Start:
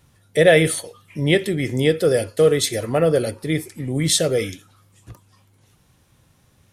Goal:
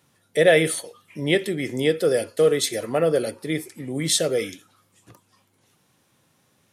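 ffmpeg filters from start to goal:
ffmpeg -i in.wav -af "highpass=190,volume=-2.5dB" out.wav

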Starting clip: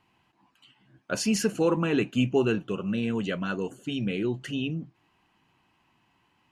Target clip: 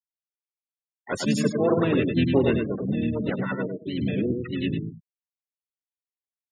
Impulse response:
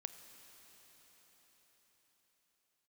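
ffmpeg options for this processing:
-filter_complex "[0:a]bandreject=frequency=6100:width=12,asplit=2[link_01][link_02];[link_02]aecho=0:1:102|204|306|408:0.631|0.177|0.0495|0.0139[link_03];[link_01][link_03]amix=inputs=2:normalize=0,afftfilt=real='re*gte(hypot(re,im),0.0562)':imag='im*gte(hypot(re,im),0.0562)':win_size=1024:overlap=0.75,asplit=4[link_04][link_05][link_06][link_07];[link_05]asetrate=29433,aresample=44100,atempo=1.49831,volume=-8dB[link_08];[link_06]asetrate=33038,aresample=44100,atempo=1.33484,volume=-10dB[link_09];[link_07]asetrate=58866,aresample=44100,atempo=0.749154,volume=-7dB[link_10];[link_04][link_08][link_09][link_10]amix=inputs=4:normalize=0"

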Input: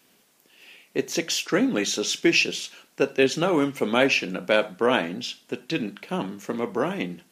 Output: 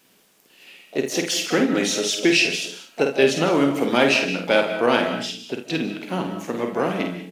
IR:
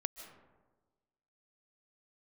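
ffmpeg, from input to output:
-filter_complex "[0:a]asplit=2[link_01][link_02];[link_02]asetrate=66075,aresample=44100,atempo=0.66742,volume=-13dB[link_03];[link_01][link_03]amix=inputs=2:normalize=0,aecho=1:1:50|79:0.501|0.178[link_04];[1:a]atrim=start_sample=2205,afade=type=out:start_time=0.27:duration=0.01,atrim=end_sample=12348[link_05];[link_04][link_05]afir=irnorm=-1:irlink=0,volume=2.5dB"

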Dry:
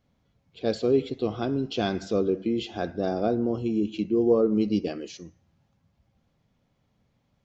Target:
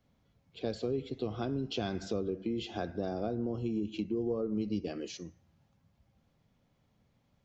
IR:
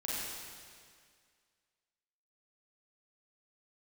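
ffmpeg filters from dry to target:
-filter_complex "[0:a]acrossover=split=120[link_01][link_02];[link_02]acompressor=threshold=-31dB:ratio=4[link_03];[link_01][link_03]amix=inputs=2:normalize=0,volume=-1.5dB"

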